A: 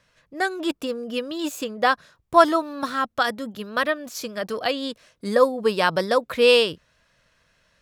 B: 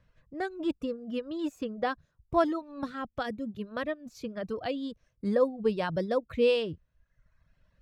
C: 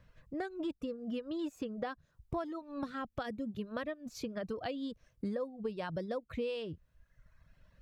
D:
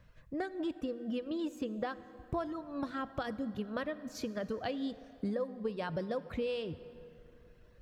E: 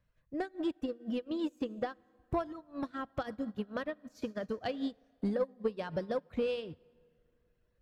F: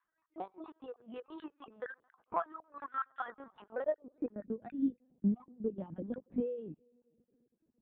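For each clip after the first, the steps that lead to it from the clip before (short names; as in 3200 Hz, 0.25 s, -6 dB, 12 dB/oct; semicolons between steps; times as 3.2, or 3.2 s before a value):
RIAA curve playback; reverb removal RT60 0.9 s; dynamic EQ 1200 Hz, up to -6 dB, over -33 dBFS, Q 1.2; gain -8.5 dB
compressor 6:1, threshold -39 dBFS, peak gain reduction 18.5 dB; gain +3.5 dB
plate-style reverb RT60 3.4 s, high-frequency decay 0.65×, DRR 13.5 dB; gain +1.5 dB
in parallel at -9.5 dB: sine folder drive 6 dB, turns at -21 dBFS; on the sum: upward expander 2.5:1, over -40 dBFS
random spectral dropouts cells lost 27%; LPC vocoder at 8 kHz pitch kept; band-pass sweep 1200 Hz -> 220 Hz, 3.48–4.48; gain +8 dB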